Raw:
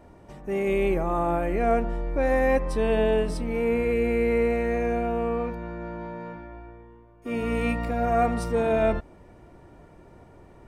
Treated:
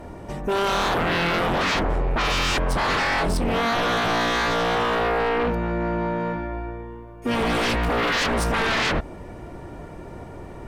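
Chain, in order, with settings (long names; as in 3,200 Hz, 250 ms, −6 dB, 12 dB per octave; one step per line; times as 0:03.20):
sine wavefolder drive 17 dB, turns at −10.5 dBFS
level −8.5 dB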